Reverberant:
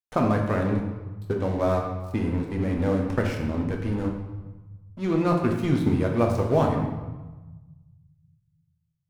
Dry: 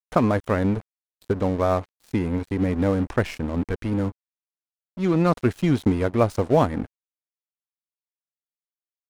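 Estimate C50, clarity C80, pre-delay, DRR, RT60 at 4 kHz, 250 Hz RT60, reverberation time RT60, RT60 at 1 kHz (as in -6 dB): 4.0 dB, 6.5 dB, 8 ms, 0.5 dB, 0.85 s, 1.9 s, 1.2 s, 1.2 s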